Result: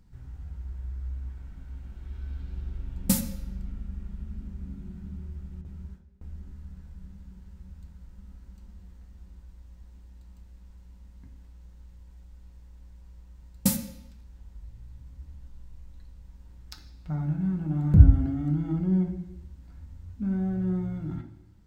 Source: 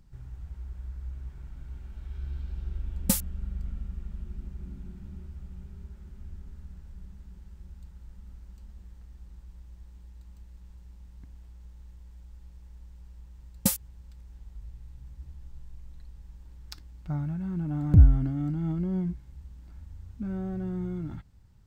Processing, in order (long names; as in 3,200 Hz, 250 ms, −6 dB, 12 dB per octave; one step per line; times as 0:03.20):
0:05.61–0:06.40: noise gate with hold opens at −35 dBFS
on a send: high-pass filter 42 Hz + convolution reverb RT60 0.85 s, pre-delay 3 ms, DRR 2 dB
on the sum: level −1.5 dB